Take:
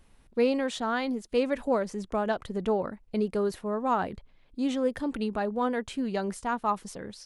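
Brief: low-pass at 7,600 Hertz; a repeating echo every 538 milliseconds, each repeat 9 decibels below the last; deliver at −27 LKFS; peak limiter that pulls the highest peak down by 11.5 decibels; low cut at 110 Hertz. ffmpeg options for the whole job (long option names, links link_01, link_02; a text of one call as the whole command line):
ffmpeg -i in.wav -af "highpass=110,lowpass=7600,alimiter=level_in=1.5dB:limit=-24dB:level=0:latency=1,volume=-1.5dB,aecho=1:1:538|1076|1614|2152:0.355|0.124|0.0435|0.0152,volume=7dB" out.wav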